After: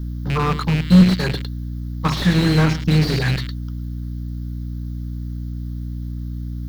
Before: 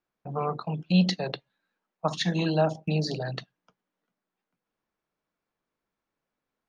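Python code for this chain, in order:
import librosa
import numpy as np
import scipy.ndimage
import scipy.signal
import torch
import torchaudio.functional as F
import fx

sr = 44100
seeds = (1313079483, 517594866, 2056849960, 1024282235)

p1 = fx.rattle_buzz(x, sr, strikes_db=-34.0, level_db=-18.0)
p2 = fx.level_steps(p1, sr, step_db=11)
p3 = p1 + (p2 * librosa.db_to_amplitude(2.0))
p4 = fx.leveller(p3, sr, passes=1)
p5 = fx.peak_eq(p4, sr, hz=4800.0, db=9.5, octaves=2.3)
p6 = fx.quant_dither(p5, sr, seeds[0], bits=10, dither='triangular')
p7 = fx.add_hum(p6, sr, base_hz=60, snr_db=11)
p8 = fx.fixed_phaser(p7, sr, hz=2500.0, stages=6)
p9 = p8 + fx.echo_single(p8, sr, ms=109, db=-17.5, dry=0)
p10 = fx.slew_limit(p9, sr, full_power_hz=89.0)
y = p10 * librosa.db_to_amplitude(5.0)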